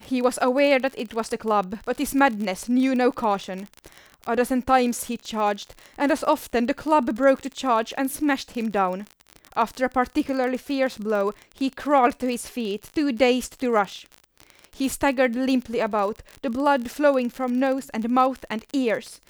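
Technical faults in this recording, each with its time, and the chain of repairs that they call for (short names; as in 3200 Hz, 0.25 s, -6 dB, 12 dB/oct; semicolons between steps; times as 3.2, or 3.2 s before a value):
crackle 41/s -28 dBFS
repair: de-click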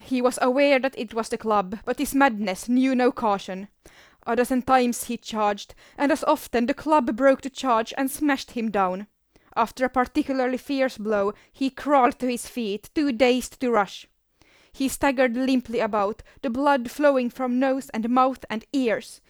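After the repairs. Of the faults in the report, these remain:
none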